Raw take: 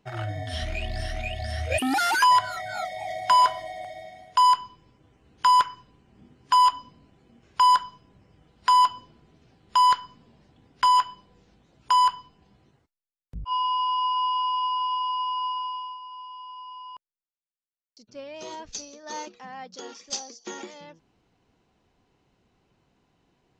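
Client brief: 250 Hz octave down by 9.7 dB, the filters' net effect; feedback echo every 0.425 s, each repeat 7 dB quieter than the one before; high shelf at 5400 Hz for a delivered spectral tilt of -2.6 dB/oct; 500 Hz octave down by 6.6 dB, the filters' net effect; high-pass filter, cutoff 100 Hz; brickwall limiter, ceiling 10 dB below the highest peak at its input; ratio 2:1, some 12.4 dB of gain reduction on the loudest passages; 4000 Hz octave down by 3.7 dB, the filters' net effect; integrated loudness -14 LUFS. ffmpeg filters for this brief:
-af "highpass=100,equalizer=f=250:t=o:g=-8.5,equalizer=f=500:t=o:g=-8,equalizer=f=4k:t=o:g=-8,highshelf=f=5.4k:g=5,acompressor=threshold=-41dB:ratio=2,alimiter=level_in=6dB:limit=-24dB:level=0:latency=1,volume=-6dB,aecho=1:1:425|850|1275|1700|2125:0.447|0.201|0.0905|0.0407|0.0183,volume=25.5dB"

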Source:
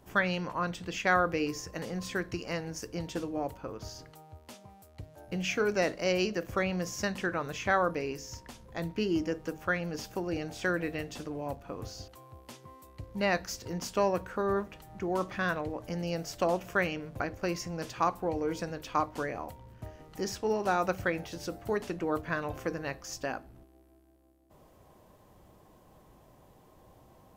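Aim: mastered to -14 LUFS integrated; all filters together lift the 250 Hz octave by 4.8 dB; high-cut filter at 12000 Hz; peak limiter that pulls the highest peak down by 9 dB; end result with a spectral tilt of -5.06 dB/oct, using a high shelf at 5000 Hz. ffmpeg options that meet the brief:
-af "lowpass=12k,equalizer=f=250:t=o:g=7.5,highshelf=f=5k:g=5,volume=18.5dB,alimiter=limit=-1.5dB:level=0:latency=1"

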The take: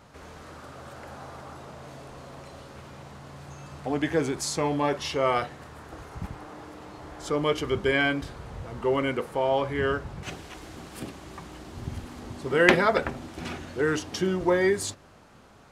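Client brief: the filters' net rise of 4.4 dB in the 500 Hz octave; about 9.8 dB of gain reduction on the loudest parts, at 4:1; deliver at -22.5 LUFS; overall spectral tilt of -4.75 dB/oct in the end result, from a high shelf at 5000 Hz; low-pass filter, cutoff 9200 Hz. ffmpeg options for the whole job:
-af "lowpass=9.2k,equalizer=f=500:t=o:g=5.5,highshelf=f=5k:g=-9,acompressor=threshold=-24dB:ratio=4,volume=9dB"

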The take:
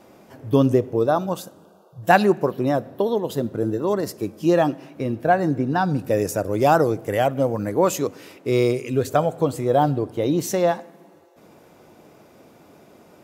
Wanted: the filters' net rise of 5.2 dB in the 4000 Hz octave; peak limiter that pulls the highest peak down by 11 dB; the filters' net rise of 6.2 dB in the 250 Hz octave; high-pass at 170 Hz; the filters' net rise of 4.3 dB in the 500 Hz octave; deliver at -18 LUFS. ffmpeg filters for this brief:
-af "highpass=170,equalizer=f=250:t=o:g=8,equalizer=f=500:t=o:g=3,equalizer=f=4k:t=o:g=6.5,volume=2.5dB,alimiter=limit=-7dB:level=0:latency=1"

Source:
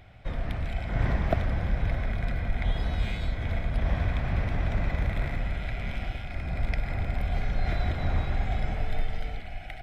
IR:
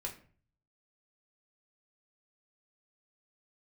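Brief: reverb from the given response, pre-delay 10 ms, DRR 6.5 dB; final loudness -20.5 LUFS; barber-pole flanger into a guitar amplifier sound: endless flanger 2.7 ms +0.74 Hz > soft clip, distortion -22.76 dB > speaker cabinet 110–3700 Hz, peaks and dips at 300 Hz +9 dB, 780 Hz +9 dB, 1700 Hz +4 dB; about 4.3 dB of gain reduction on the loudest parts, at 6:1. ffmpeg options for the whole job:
-filter_complex "[0:a]acompressor=threshold=-25dB:ratio=6,asplit=2[a][b];[1:a]atrim=start_sample=2205,adelay=10[c];[b][c]afir=irnorm=-1:irlink=0,volume=-6dB[d];[a][d]amix=inputs=2:normalize=0,asplit=2[e][f];[f]adelay=2.7,afreqshift=0.74[g];[e][g]amix=inputs=2:normalize=1,asoftclip=threshold=-22dB,highpass=110,equalizer=f=300:t=q:w=4:g=9,equalizer=f=780:t=q:w=4:g=9,equalizer=f=1.7k:t=q:w=4:g=4,lowpass=f=3.7k:w=0.5412,lowpass=f=3.7k:w=1.3066,volume=18dB"

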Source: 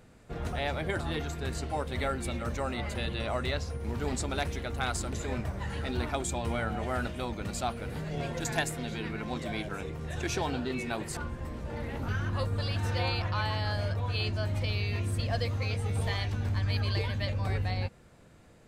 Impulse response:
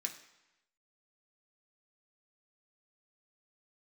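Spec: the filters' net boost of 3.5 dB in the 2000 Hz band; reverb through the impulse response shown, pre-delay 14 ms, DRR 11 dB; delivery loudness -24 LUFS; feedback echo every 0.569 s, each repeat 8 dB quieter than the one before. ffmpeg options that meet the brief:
-filter_complex "[0:a]equalizer=f=2k:t=o:g=4.5,aecho=1:1:569|1138|1707|2276|2845:0.398|0.159|0.0637|0.0255|0.0102,asplit=2[a][b];[1:a]atrim=start_sample=2205,adelay=14[c];[b][c]afir=irnorm=-1:irlink=0,volume=-10dB[d];[a][d]amix=inputs=2:normalize=0,volume=7.5dB"

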